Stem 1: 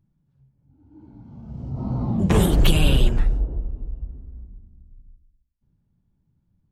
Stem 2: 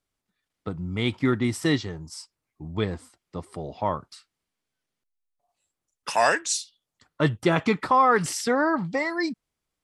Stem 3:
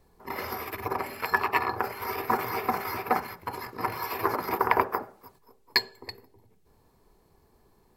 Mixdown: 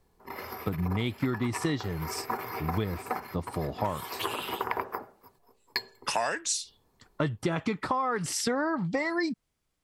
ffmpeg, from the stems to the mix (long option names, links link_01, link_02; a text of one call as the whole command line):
ffmpeg -i stem1.wav -i stem2.wav -i stem3.wav -filter_complex "[0:a]highpass=1300,adelay=1550,volume=-10.5dB[link_01];[1:a]lowshelf=frequency=190:gain=4.5,volume=2dB[link_02];[2:a]volume=-5.5dB[link_03];[link_01][link_02][link_03]amix=inputs=3:normalize=0,acompressor=threshold=-25dB:ratio=12" out.wav